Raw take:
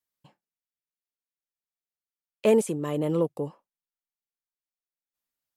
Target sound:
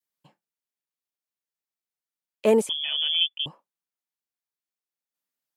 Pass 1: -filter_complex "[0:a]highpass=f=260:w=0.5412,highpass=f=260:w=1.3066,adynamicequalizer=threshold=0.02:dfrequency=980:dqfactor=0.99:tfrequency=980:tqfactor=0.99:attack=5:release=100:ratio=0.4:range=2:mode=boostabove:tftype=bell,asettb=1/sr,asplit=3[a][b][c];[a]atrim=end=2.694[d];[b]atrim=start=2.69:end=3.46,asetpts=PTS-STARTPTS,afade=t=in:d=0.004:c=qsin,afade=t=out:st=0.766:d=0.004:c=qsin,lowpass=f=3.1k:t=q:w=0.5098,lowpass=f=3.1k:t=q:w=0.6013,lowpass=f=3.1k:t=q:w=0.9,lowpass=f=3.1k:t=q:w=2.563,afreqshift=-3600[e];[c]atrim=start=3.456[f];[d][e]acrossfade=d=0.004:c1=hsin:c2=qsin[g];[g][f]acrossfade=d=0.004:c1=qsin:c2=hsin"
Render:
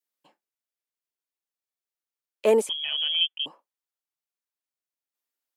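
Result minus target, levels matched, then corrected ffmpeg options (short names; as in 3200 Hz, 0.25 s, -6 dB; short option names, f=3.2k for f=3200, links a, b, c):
125 Hz band -7.5 dB
-filter_complex "[0:a]highpass=f=130:w=0.5412,highpass=f=130:w=1.3066,adynamicequalizer=threshold=0.02:dfrequency=980:dqfactor=0.99:tfrequency=980:tqfactor=0.99:attack=5:release=100:ratio=0.4:range=2:mode=boostabove:tftype=bell,asettb=1/sr,asplit=3[a][b][c];[a]atrim=end=2.694[d];[b]atrim=start=2.69:end=3.46,asetpts=PTS-STARTPTS,afade=t=in:d=0.004:c=qsin,afade=t=out:st=0.766:d=0.004:c=qsin,lowpass=f=3.1k:t=q:w=0.5098,lowpass=f=3.1k:t=q:w=0.6013,lowpass=f=3.1k:t=q:w=0.9,lowpass=f=3.1k:t=q:w=2.563,afreqshift=-3600[e];[c]atrim=start=3.456[f];[d][e]acrossfade=d=0.004:c1=hsin:c2=qsin[g];[g][f]acrossfade=d=0.004:c1=qsin:c2=hsin"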